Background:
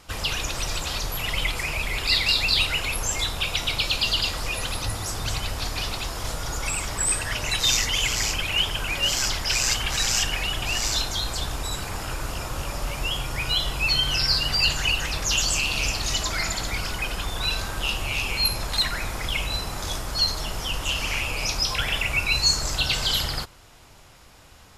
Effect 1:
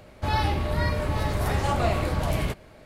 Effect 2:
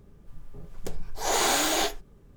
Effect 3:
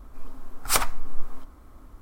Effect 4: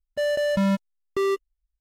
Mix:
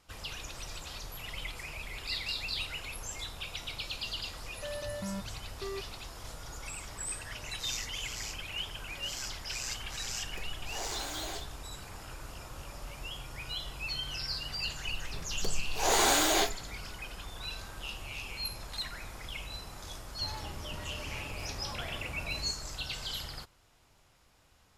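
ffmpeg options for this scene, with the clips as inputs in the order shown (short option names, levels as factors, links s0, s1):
-filter_complex "[2:a]asplit=2[s0][s1];[0:a]volume=0.188[s2];[s0]alimiter=limit=0.133:level=0:latency=1:release=185[s3];[1:a]asoftclip=type=tanh:threshold=0.0473[s4];[4:a]atrim=end=1.8,asetpts=PTS-STARTPTS,volume=0.15,afade=t=in:d=0.004:c=hsin,afade=t=out:st=1.796:d=0.004:c=hsin,adelay=196245S[s5];[s3]atrim=end=2.36,asetpts=PTS-STARTPTS,volume=0.251,afade=t=in:d=0.004:c=hsin,afade=t=out:st=2.356:d=0.004:c=hsin,adelay=9510[s6];[s1]atrim=end=2.36,asetpts=PTS-STARTPTS,volume=0.841,afade=t=in:d=0.004:c=hsin,afade=t=out:st=2.356:d=0.004:c=hsin,adelay=14580[s7];[s4]atrim=end=2.85,asetpts=PTS-STARTPTS,volume=0.224,afade=t=in:d=0.004:c=hsin,afade=t=out:st=2.846:d=0.004:c=hsin,adelay=19980[s8];[s2][s5][s6][s7][s8]amix=inputs=5:normalize=0"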